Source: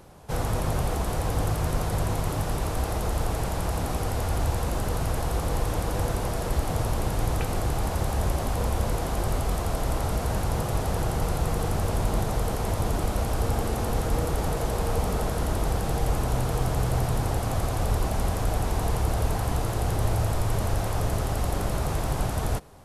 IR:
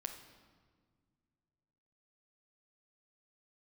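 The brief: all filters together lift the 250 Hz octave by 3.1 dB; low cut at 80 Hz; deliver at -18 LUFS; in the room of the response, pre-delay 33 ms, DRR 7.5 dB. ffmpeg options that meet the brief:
-filter_complex "[0:a]highpass=80,equalizer=f=250:t=o:g=4.5,asplit=2[a][b];[1:a]atrim=start_sample=2205,adelay=33[c];[b][c]afir=irnorm=-1:irlink=0,volume=-5.5dB[d];[a][d]amix=inputs=2:normalize=0,volume=9.5dB"

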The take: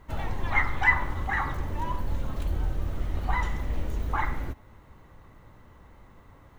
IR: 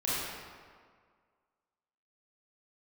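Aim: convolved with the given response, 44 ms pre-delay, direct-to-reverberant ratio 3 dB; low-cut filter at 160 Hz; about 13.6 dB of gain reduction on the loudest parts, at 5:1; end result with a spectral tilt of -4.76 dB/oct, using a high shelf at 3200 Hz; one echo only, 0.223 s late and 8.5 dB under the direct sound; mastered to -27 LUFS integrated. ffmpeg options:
-filter_complex "[0:a]highpass=160,highshelf=f=3.2k:g=8,acompressor=threshold=-30dB:ratio=5,aecho=1:1:223:0.376,asplit=2[a][b];[1:a]atrim=start_sample=2205,adelay=44[c];[b][c]afir=irnorm=-1:irlink=0,volume=-11.5dB[d];[a][d]amix=inputs=2:normalize=0,volume=7dB"

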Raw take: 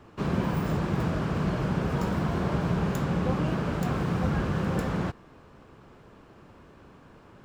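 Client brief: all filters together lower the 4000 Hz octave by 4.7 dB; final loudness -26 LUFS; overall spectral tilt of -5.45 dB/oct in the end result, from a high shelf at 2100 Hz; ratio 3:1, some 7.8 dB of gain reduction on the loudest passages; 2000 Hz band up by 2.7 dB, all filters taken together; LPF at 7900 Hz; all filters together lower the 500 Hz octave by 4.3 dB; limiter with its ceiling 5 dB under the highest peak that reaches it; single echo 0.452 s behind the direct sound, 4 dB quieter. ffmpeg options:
-af "lowpass=7.9k,equalizer=f=500:t=o:g=-5.5,equalizer=f=2k:t=o:g=8.5,highshelf=f=2.1k:g=-7,equalizer=f=4k:t=o:g=-3.5,acompressor=threshold=-34dB:ratio=3,alimiter=level_in=4.5dB:limit=-24dB:level=0:latency=1,volume=-4.5dB,aecho=1:1:452:0.631,volume=10.5dB"

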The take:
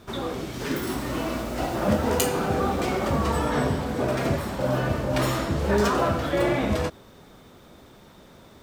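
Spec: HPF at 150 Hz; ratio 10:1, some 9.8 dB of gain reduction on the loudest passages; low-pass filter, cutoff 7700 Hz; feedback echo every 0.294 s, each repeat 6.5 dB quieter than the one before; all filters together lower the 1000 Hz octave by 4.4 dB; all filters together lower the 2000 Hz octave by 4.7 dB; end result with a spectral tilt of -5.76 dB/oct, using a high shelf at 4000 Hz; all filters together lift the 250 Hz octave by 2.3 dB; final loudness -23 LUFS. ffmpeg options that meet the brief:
-af "highpass=150,lowpass=7.7k,equalizer=f=250:t=o:g=4,equalizer=f=1k:t=o:g=-5,equalizer=f=2k:t=o:g=-3.5,highshelf=f=4k:g=-3.5,acompressor=threshold=-27dB:ratio=10,aecho=1:1:294|588|882|1176|1470|1764:0.473|0.222|0.105|0.0491|0.0231|0.0109,volume=8dB"

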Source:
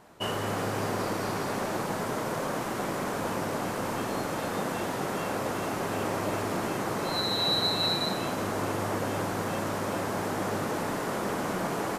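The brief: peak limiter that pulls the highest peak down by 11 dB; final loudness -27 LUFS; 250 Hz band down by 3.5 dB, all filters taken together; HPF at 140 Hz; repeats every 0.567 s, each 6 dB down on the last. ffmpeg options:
-af "highpass=140,equalizer=f=250:t=o:g=-4,alimiter=level_in=2.5dB:limit=-24dB:level=0:latency=1,volume=-2.5dB,aecho=1:1:567|1134|1701|2268|2835|3402:0.501|0.251|0.125|0.0626|0.0313|0.0157,volume=7dB"

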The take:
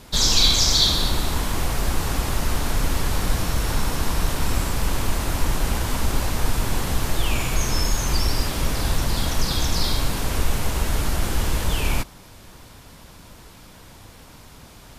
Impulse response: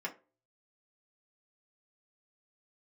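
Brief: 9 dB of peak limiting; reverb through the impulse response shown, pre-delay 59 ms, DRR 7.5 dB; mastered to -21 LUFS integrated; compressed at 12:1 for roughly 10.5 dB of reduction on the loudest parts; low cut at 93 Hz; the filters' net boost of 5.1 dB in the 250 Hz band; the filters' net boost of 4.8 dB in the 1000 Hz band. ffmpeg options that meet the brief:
-filter_complex "[0:a]highpass=93,equalizer=f=250:t=o:g=6.5,equalizer=f=1k:t=o:g=5.5,acompressor=threshold=-24dB:ratio=12,alimiter=limit=-23.5dB:level=0:latency=1,asplit=2[a][b];[1:a]atrim=start_sample=2205,adelay=59[c];[b][c]afir=irnorm=-1:irlink=0,volume=-10dB[d];[a][d]amix=inputs=2:normalize=0,volume=11dB"

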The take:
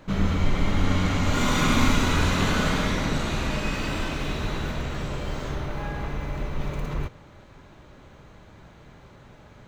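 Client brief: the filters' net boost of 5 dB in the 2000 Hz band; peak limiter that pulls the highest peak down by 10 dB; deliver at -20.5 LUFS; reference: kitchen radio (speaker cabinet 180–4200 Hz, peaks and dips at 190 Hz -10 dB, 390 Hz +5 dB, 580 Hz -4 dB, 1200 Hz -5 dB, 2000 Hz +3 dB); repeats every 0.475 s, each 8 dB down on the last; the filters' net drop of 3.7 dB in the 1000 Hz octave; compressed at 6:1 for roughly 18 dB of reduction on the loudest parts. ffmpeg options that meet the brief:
-af "equalizer=f=1k:t=o:g=-4,equalizer=f=2k:t=o:g=6,acompressor=threshold=-36dB:ratio=6,alimiter=level_in=11dB:limit=-24dB:level=0:latency=1,volume=-11dB,highpass=180,equalizer=f=190:t=q:w=4:g=-10,equalizer=f=390:t=q:w=4:g=5,equalizer=f=580:t=q:w=4:g=-4,equalizer=f=1.2k:t=q:w=4:g=-5,equalizer=f=2k:t=q:w=4:g=3,lowpass=f=4.2k:w=0.5412,lowpass=f=4.2k:w=1.3066,aecho=1:1:475|950|1425|1900|2375:0.398|0.159|0.0637|0.0255|0.0102,volume=26dB"

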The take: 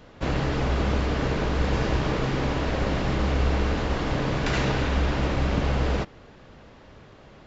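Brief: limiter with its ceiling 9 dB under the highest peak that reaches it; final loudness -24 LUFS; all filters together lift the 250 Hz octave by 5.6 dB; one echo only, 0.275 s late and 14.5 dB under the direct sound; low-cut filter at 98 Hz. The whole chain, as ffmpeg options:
-af "highpass=98,equalizer=f=250:t=o:g=7.5,alimiter=limit=-16.5dB:level=0:latency=1,aecho=1:1:275:0.188,volume=2dB"

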